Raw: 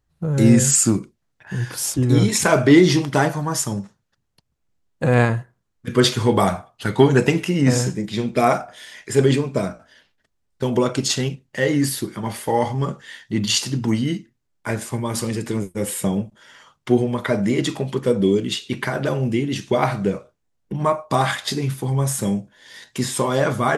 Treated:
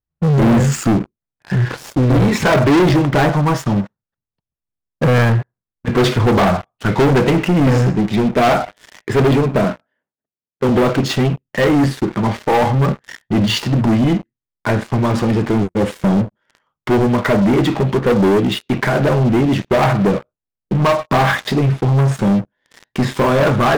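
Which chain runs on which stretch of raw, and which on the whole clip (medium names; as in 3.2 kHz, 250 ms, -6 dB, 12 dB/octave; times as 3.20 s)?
9.64–10.69 s: high-pass 150 Hz + level-controlled noise filter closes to 690 Hz, open at -28 dBFS
whole clip: Bessel low-pass 1.8 kHz, order 2; waveshaping leveller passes 5; trim -6 dB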